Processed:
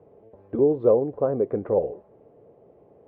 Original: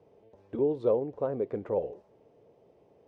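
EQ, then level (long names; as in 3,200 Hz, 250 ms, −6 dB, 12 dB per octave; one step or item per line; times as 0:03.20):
low-pass filter 1,400 Hz 12 dB per octave
notch filter 920 Hz, Q 15
+7.5 dB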